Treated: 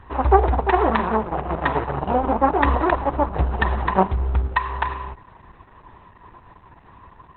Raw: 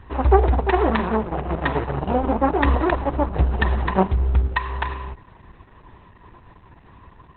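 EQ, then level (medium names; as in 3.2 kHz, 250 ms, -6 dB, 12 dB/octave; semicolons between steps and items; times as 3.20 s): peaking EQ 990 Hz +6.5 dB 1.7 oct; -2.5 dB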